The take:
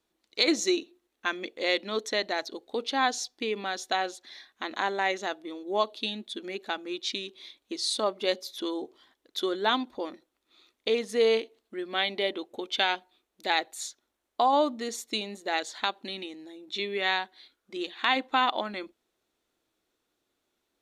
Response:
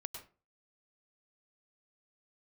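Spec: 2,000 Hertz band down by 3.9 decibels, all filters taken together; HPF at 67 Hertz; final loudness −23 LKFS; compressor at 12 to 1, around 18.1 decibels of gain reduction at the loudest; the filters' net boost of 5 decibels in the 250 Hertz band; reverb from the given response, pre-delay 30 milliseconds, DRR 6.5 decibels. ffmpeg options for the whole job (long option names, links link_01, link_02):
-filter_complex "[0:a]highpass=67,equalizer=frequency=250:width_type=o:gain=7,equalizer=frequency=2000:width_type=o:gain=-5,acompressor=threshold=-36dB:ratio=12,asplit=2[link_01][link_02];[1:a]atrim=start_sample=2205,adelay=30[link_03];[link_02][link_03]afir=irnorm=-1:irlink=0,volume=-4dB[link_04];[link_01][link_04]amix=inputs=2:normalize=0,volume=17dB"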